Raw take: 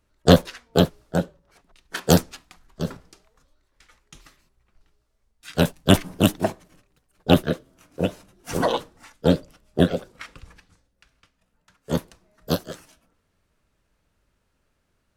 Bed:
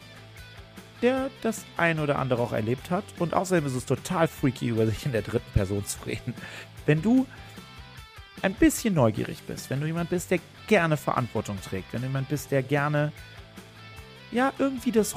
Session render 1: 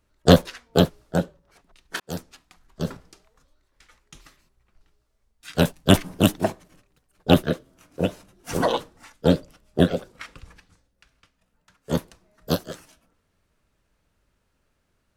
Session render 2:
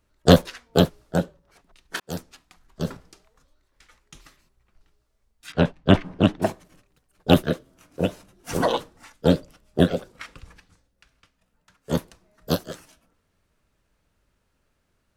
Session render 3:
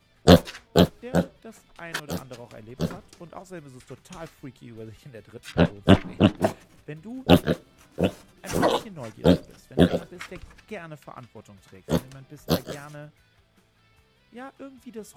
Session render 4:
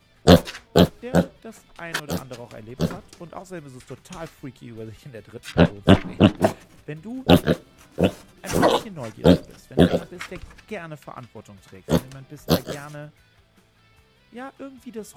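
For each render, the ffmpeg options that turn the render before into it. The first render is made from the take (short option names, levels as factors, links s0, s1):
-filter_complex "[0:a]asplit=2[s0][s1];[s0]atrim=end=2,asetpts=PTS-STARTPTS,afade=t=out:st=1.996:d=0.004:c=hsin[s2];[s1]atrim=start=2,asetpts=PTS-STARTPTS,afade=t=in:d=0.87[s3];[s2][s3]concat=n=2:v=0:a=1"
-filter_complex "[0:a]asettb=1/sr,asplit=3[s0][s1][s2];[s0]atrim=end=5.524[s3];[s1]atrim=start=5.52:end=6.42,asetpts=PTS-STARTPTS,afade=t=in:d=0.004:c=qsin,afade=t=out:st=0.896:d=0.004:c=qsin,lowpass=2700[s4];[s2]atrim=start=6.416[s5];[s3][s4]acrossfade=d=0.004:c1=hsin:c2=qsin[s6];[s6][s5]acrossfade=d=0.004:c1=qsin:c2=hsin"
-filter_complex "[1:a]volume=0.15[s0];[0:a][s0]amix=inputs=2:normalize=0"
-af "volume=1.58,alimiter=limit=0.891:level=0:latency=1"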